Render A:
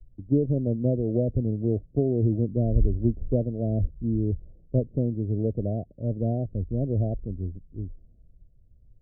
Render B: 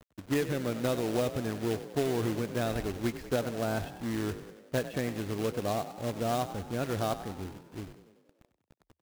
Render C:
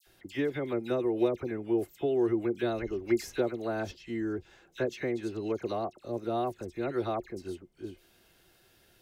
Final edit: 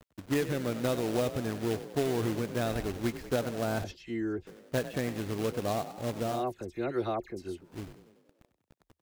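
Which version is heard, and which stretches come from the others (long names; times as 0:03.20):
B
0:03.84–0:04.47: punch in from C
0:06.34–0:07.67: punch in from C, crossfade 0.24 s
not used: A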